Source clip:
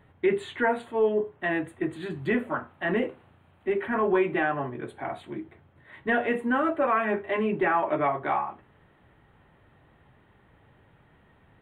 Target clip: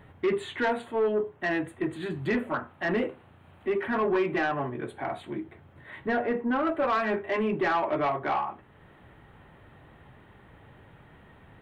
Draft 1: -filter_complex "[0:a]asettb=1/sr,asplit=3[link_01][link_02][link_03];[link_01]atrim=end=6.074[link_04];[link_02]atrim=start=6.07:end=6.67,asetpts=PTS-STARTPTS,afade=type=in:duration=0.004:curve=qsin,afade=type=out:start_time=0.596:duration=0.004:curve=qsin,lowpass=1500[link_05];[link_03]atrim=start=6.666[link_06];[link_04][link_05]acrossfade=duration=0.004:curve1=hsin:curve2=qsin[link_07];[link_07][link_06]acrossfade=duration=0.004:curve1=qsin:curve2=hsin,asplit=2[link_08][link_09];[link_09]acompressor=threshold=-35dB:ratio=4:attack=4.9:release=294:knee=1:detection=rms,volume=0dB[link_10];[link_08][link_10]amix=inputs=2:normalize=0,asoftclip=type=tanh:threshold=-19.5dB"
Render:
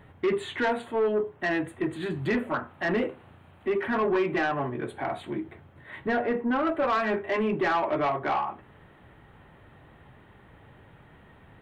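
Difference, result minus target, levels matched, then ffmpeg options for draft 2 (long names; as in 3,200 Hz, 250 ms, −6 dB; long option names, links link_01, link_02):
downward compressor: peak gain reduction −9 dB
-filter_complex "[0:a]asettb=1/sr,asplit=3[link_01][link_02][link_03];[link_01]atrim=end=6.074[link_04];[link_02]atrim=start=6.07:end=6.67,asetpts=PTS-STARTPTS,afade=type=in:duration=0.004:curve=qsin,afade=type=out:start_time=0.596:duration=0.004:curve=qsin,lowpass=1500[link_05];[link_03]atrim=start=6.666[link_06];[link_04][link_05]acrossfade=duration=0.004:curve1=hsin:curve2=qsin[link_07];[link_07][link_06]acrossfade=duration=0.004:curve1=qsin:curve2=hsin,asplit=2[link_08][link_09];[link_09]acompressor=threshold=-47dB:ratio=4:attack=4.9:release=294:knee=1:detection=rms,volume=0dB[link_10];[link_08][link_10]amix=inputs=2:normalize=0,asoftclip=type=tanh:threshold=-19.5dB"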